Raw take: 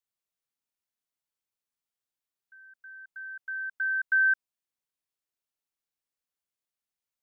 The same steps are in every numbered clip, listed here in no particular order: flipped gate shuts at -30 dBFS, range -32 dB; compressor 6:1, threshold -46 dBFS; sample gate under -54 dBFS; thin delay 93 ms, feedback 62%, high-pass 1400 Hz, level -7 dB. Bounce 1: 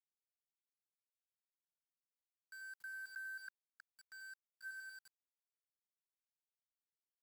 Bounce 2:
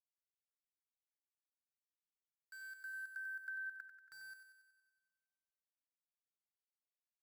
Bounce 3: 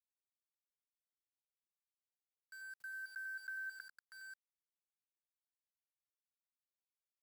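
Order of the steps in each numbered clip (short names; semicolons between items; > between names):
thin delay > flipped gate > compressor > sample gate; flipped gate > sample gate > compressor > thin delay; flipped gate > compressor > thin delay > sample gate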